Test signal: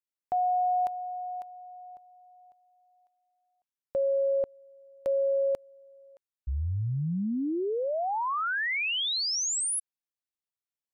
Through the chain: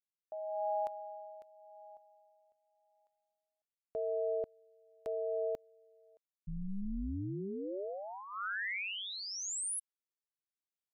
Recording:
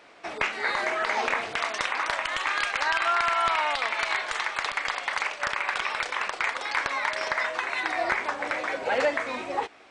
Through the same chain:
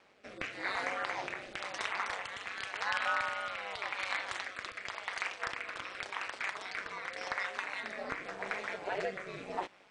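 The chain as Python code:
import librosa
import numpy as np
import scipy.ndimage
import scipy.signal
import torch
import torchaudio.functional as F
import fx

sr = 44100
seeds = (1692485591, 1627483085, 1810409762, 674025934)

y = x * np.sin(2.0 * np.pi * 97.0 * np.arange(len(x)) / sr)
y = fx.rotary(y, sr, hz=0.9)
y = F.gain(torch.from_numpy(y), -4.5).numpy()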